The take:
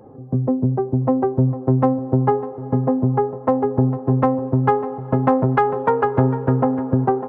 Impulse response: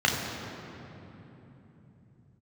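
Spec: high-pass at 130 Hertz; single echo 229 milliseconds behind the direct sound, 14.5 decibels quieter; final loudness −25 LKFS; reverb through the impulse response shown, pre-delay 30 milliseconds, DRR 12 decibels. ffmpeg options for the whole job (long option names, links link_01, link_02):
-filter_complex "[0:a]highpass=130,aecho=1:1:229:0.188,asplit=2[link_01][link_02];[1:a]atrim=start_sample=2205,adelay=30[link_03];[link_02][link_03]afir=irnorm=-1:irlink=0,volume=-27.5dB[link_04];[link_01][link_04]amix=inputs=2:normalize=0,volume=-5.5dB"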